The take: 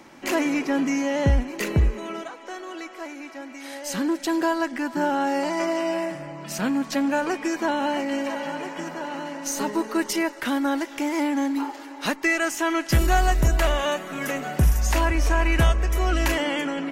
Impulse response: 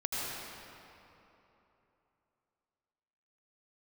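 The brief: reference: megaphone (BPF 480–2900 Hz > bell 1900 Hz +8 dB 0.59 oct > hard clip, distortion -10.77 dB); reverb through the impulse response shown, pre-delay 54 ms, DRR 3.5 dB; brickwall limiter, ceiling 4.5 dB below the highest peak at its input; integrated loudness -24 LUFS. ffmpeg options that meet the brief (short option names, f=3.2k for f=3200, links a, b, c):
-filter_complex "[0:a]alimiter=limit=-15dB:level=0:latency=1,asplit=2[a][b];[1:a]atrim=start_sample=2205,adelay=54[c];[b][c]afir=irnorm=-1:irlink=0,volume=-10dB[d];[a][d]amix=inputs=2:normalize=0,highpass=480,lowpass=2.9k,equalizer=f=1.9k:t=o:w=0.59:g=8,asoftclip=type=hard:threshold=-23.5dB,volume=4dB"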